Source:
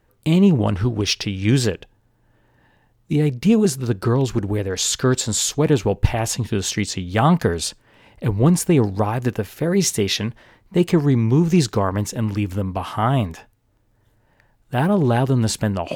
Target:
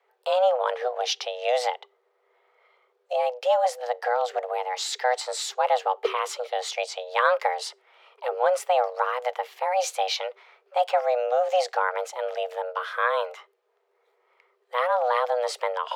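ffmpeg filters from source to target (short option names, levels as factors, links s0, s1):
-filter_complex "[0:a]afreqshift=370,acrossover=split=580 4700:gain=0.224 1 0.224[s0][s1][s2];[s0][s1][s2]amix=inputs=3:normalize=0,volume=0.708"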